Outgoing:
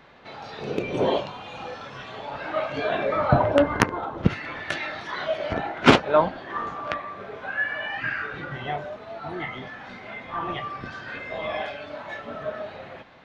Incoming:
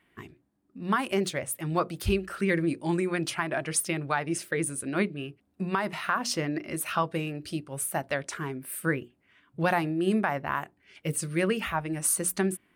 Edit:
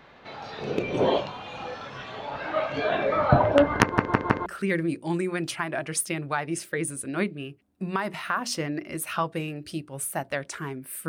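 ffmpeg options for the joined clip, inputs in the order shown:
ffmpeg -i cue0.wav -i cue1.wav -filter_complex "[0:a]apad=whole_dur=11.08,atrim=end=11.08,asplit=4[link_01][link_02][link_03][link_04];[link_01]atrim=end=3.982[link_05];[link_02]atrim=start=3.818:end=3.982[link_06];[link_03]atrim=start=3.818:end=3.982[link_07];[link_04]atrim=start=3.818:end=3.982[link_08];[1:a]atrim=start=2.248:end=8.87[link_09];[link_05][link_06]acrossfade=duration=0.004:curve1=hsin:curve2=hsin[link_10];[link_10][link_07]acrossfade=duration=0.004:curve1=hsin:curve2=hsin[link_11];[link_11][link_08]acrossfade=duration=0.004:curve1=hsin:curve2=hsin[link_12];[link_12][link_09]acrossfade=duration=0.004:curve1=hsin:curve2=hsin" out.wav

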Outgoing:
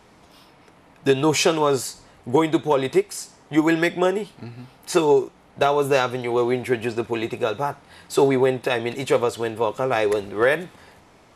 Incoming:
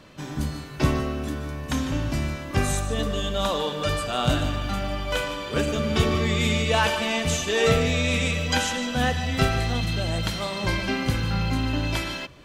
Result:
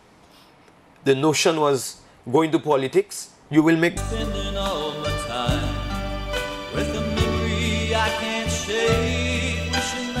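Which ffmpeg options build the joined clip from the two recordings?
ffmpeg -i cue0.wav -i cue1.wav -filter_complex "[0:a]asettb=1/sr,asplit=3[link_01][link_02][link_03];[link_01]atrim=end=3.434[link_04];[link_02]atrim=start=3.43:end=3.97,asetpts=PTS-STARTPTS,afade=type=in:duration=0.004:curve=qsin,afade=type=out:start_time=0.536:duration=0.004:curve=qsin,lowshelf=frequency=140:gain=11.5[link_05];[link_03]atrim=start=3.966[link_06];[link_04][link_05]acrossfade=duration=0.004:curve1=hsin:curve2=qsin[link_07];[link_07][link_06]acrossfade=duration=0.004:curve1=qsin:curve2=hsin,apad=whole_dur=10.2,atrim=end=10.2,atrim=end=3.972[link_08];[1:a]atrim=start=2.758:end=8.99[link_09];[link_08][link_09]acrossfade=duration=0.004:curve1=hsin:curve2=hsin" out.wav

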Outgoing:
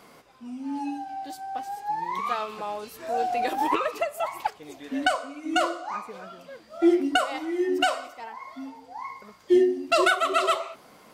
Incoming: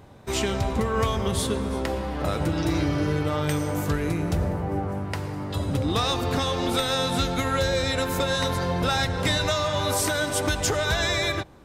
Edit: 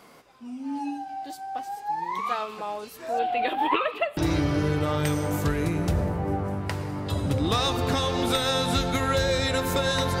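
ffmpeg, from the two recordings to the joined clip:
ffmpeg -i cue0.wav -i cue1.wav -filter_complex "[0:a]asettb=1/sr,asplit=3[link_01][link_02][link_03];[link_01]atrim=end=3.194[link_04];[link_02]atrim=start=3.19:end=4.17,asetpts=PTS-STARTPTS,afade=type=in:duration=0.004:curve=qsin,afade=type=out:start_time=0.976:duration=0.004:curve=qsin,highshelf=frequency=4400:width_type=q:width=3:gain=-10.5[link_05];[link_03]atrim=start=4.166[link_06];[link_04][link_05]acrossfade=duration=0.004:curve1=hsin:curve2=qsin[link_07];[link_07][link_06]acrossfade=duration=0.004:curve1=qsin:curve2=hsin,apad=whole_dur=10.2,atrim=end=10.2,atrim=end=4.172[link_08];[1:a]atrim=start=2.608:end=8.64[link_09];[link_08][link_09]acrossfade=duration=0.004:curve1=hsin:curve2=hsin" out.wav

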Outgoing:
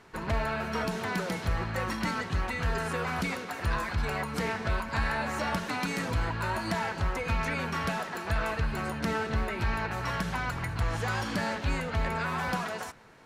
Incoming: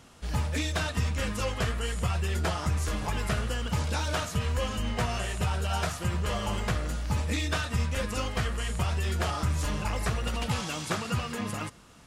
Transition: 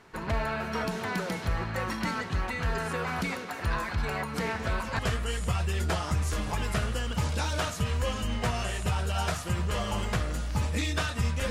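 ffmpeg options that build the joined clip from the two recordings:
ffmpeg -i cue0.wav -i cue1.wav -filter_complex "[1:a]asplit=2[link_01][link_02];[0:a]apad=whole_dur=11.5,atrim=end=11.5,atrim=end=4.992[link_03];[link_02]atrim=start=1.538:end=8.05[link_04];[link_01]atrim=start=1.09:end=1.54,asetpts=PTS-STARTPTS,volume=-11dB,afade=type=in:duration=0.004:curve=hsin,afade=type=out:start_time=0.446:duration=0.004:curve=hsin,adelay=4540[link_05];[link_03][link_04]acrossfade=duration=0.004:curve1=hsin:curve2=hsin[link_06];[link_06][link_05]amix=inputs=2:normalize=0" out.wav

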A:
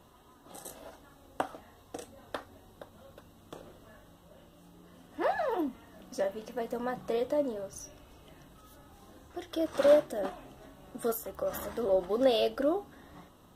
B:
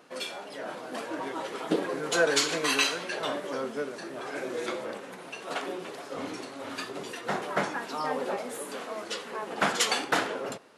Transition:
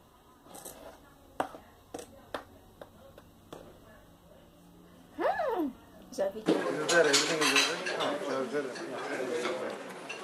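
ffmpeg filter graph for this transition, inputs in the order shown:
ffmpeg -i cue0.wav -i cue1.wav -filter_complex "[0:a]asettb=1/sr,asplit=3[link_01][link_02][link_03];[link_01]atrim=end=5.734[link_04];[link_02]atrim=start=5.73:end=6.46,asetpts=PTS-STARTPTS,afade=type=in:duration=0.004:curve=qsin,afade=type=out:start_time=0.726:duration=0.004:curve=qsin,equalizer=frequency=2100:width_type=o:width=0.25:gain=-10.5[link_05];[link_03]atrim=start=6.456[link_06];[link_04][link_05]acrossfade=duration=0.004:curve1=hsin:curve2=qsin[link_07];[link_07][link_06]acrossfade=duration=0.004:curve1=qsin:curve2=hsin,apad=whole_dur=10.23,atrim=end=10.23,atrim=end=6.462[link_08];[1:a]atrim=start=1.688:end=5.46[link_09];[link_08][link_09]acrossfade=duration=0.004:curve1=hsin:curve2=hsin" out.wav

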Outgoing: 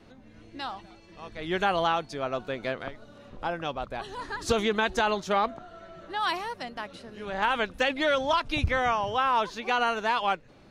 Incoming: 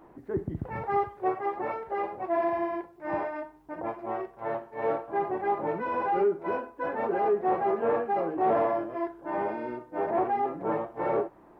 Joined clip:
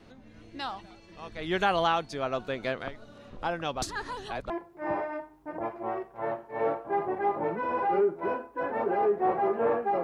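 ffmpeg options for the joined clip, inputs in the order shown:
ffmpeg -i cue0.wav -i cue1.wav -filter_complex "[0:a]apad=whole_dur=10.03,atrim=end=10.03,asplit=2[link_01][link_02];[link_01]atrim=end=3.822[link_03];[link_02]atrim=start=3.818:end=4.502,asetpts=PTS-STARTPTS,areverse[link_04];[1:a]atrim=start=2.728:end=8.26[link_05];[link_03][link_04]acrossfade=duration=0.004:curve1=hsin:curve2=hsin[link_06];[link_06][link_05]acrossfade=duration=0.004:curve1=hsin:curve2=hsin" out.wav

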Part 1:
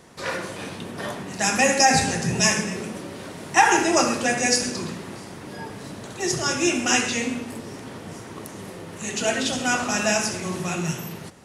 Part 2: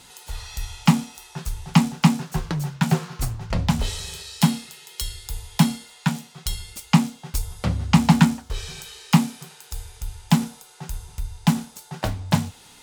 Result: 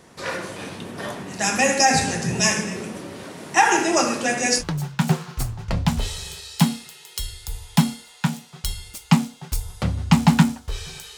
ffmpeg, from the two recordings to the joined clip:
ffmpeg -i cue0.wav -i cue1.wav -filter_complex "[0:a]asettb=1/sr,asplit=3[link_01][link_02][link_03];[link_01]atrim=end=3.244[link_04];[link_02]atrim=start=3.24:end=4.64,asetpts=PTS-STARTPTS,afade=type=in:duration=0.004:curve=qsin,afade=type=out:start_time=1.396:duration=0.004:curve=qsin,highpass=130[link_05];[link_03]atrim=start=4.636[link_06];[link_04][link_05]acrossfade=duration=0.004:curve1=hsin:curve2=qsin[link_07];[link_07][link_06]acrossfade=duration=0.004:curve1=qsin:curve2=hsin,apad=whole_dur=11.17,atrim=end=11.17,atrim=end=4.64,asetpts=PTS-STARTPTS[link_08];[1:a]atrim=start=2.4:end=8.99,asetpts=PTS-STARTPTS[link_09];[link_08][link_09]acrossfade=duration=0.06:curve1=tri:curve2=tri" out.wav

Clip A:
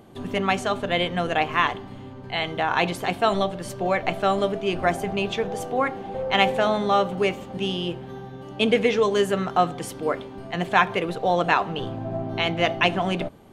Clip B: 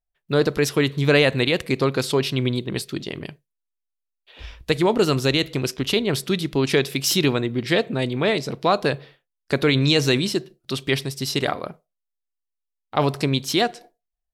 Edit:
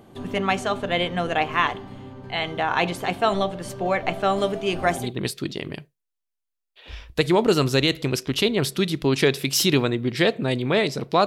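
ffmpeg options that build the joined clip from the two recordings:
ffmpeg -i cue0.wav -i cue1.wav -filter_complex "[0:a]asettb=1/sr,asplit=3[link_01][link_02][link_03];[link_01]atrim=end=4.364[link_04];[link_02]atrim=start=4.36:end=5.13,asetpts=PTS-STARTPTS,afade=type=in:duration=0.004:curve=qsin,afade=type=out:start_time=0.766:duration=0.004:curve=qsin,highshelf=frequency=4600:gain=8[link_05];[link_03]atrim=start=5.126[link_06];[link_04][link_05]acrossfade=duration=0.004:curve1=hsin:curve2=qsin[link_07];[link_07][link_06]acrossfade=duration=0.004:curve1=qsin:curve2=hsin,apad=whole_dur=11.26,atrim=end=11.26,atrim=end=5.13,asetpts=PTS-STARTPTS[link_08];[1:a]atrim=start=2.46:end=8.77,asetpts=PTS-STARTPTS[link_09];[link_08][link_09]acrossfade=duration=0.18:curve1=tri:curve2=tri" out.wav

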